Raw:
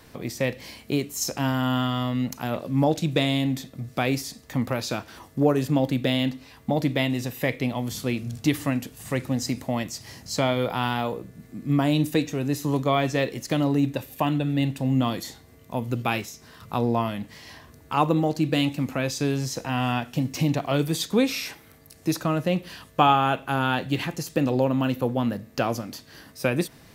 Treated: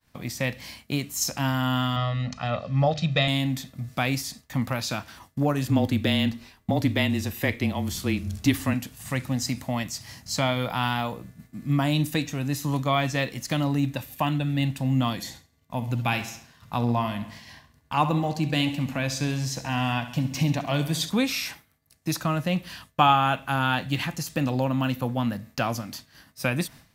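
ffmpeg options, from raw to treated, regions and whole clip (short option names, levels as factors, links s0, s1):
-filter_complex "[0:a]asettb=1/sr,asplit=3[s0][s1][s2];[s0]atrim=end=1.964[s3];[s1]atrim=start=1.96:end=3.28,asetpts=PTS-STARTPTS,afade=t=in:d=0.004:c=qsin,afade=t=out:st=1.316:d=0.004:c=qsin,lowpass=f=5300:w=0.5412,lowpass=f=5300:w=1.3066,bandreject=f=50:t=h:w=6,bandreject=f=100:t=h:w=6,bandreject=f=150:t=h:w=6,bandreject=f=200:t=h:w=6,bandreject=f=250:t=h:w=6,bandreject=f=300:t=h:w=6,bandreject=f=350:t=h:w=6,aecho=1:1:1.6:0.69,atrim=end_sample=58212[s4];[s2]atrim=start=3.276[s5];[s3][s4]acrossfade=d=0.004:c1=hsin:c2=qsin[s6];[s6][s5]acrossfade=d=0.004:c1=qsin:c2=hsin,asettb=1/sr,asplit=3[s7][s8][s9];[s7]atrim=end=5.674[s10];[s8]atrim=start=5.67:end=8.74,asetpts=PTS-STARTPTS,afade=t=in:d=0.004:c=qsin,afade=t=out:st=3.066:d=0.004:c=qsin,equalizer=f=380:t=o:w=0.49:g=10.5,afreqshift=-25[s11];[s9]atrim=start=8.736[s12];[s10][s11]acrossfade=d=0.004:c1=hsin:c2=qsin[s13];[s13][s12]acrossfade=d=0.004:c1=qsin:c2=hsin,asettb=1/sr,asplit=3[s14][s15][s16];[s14]atrim=end=15.134[s17];[s15]atrim=start=15.13:end=21.1,asetpts=PTS-STARTPTS,afade=t=in:d=0.004:c=qsin,afade=t=out:st=5.966:d=0.004:c=qsin,highshelf=f=8200:g=-4.5,bandreject=f=1300:w=8.5,aecho=1:1:67|134|201|268|335|402:0.224|0.13|0.0753|0.0437|0.0253|0.0147,atrim=end_sample=263277[s18];[s16]atrim=start=21.096[s19];[s17][s18]acrossfade=d=0.004:c1=hsin:c2=qsin[s20];[s20][s19]acrossfade=d=0.004:c1=qsin:c2=hsin,agate=range=0.0224:threshold=0.01:ratio=3:detection=peak,equalizer=f=410:t=o:w=0.91:g=-11.5,volume=1.19"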